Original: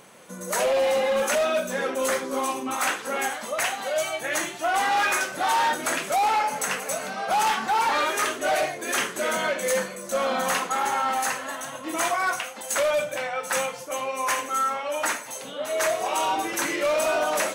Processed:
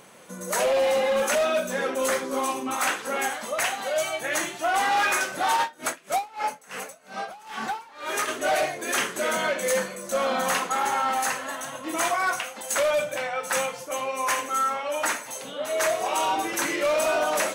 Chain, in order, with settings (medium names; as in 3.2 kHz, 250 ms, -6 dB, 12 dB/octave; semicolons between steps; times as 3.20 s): 5.56–8.27 s: logarithmic tremolo 4.1 Hz -> 1.7 Hz, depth 27 dB